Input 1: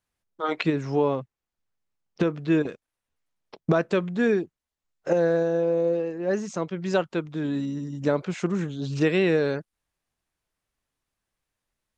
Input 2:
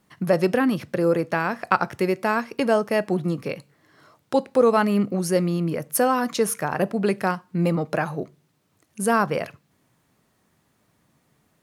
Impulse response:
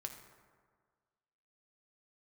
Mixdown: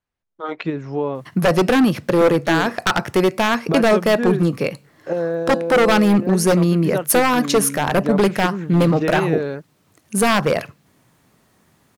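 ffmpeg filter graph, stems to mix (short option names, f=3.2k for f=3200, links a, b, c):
-filter_complex "[0:a]lowpass=f=2.8k:p=1,volume=0dB[a];[1:a]acontrast=61,aeval=exprs='0.299*(abs(mod(val(0)/0.299+3,4)-2)-1)':c=same,adelay=1150,volume=1.5dB[b];[a][b]amix=inputs=2:normalize=0"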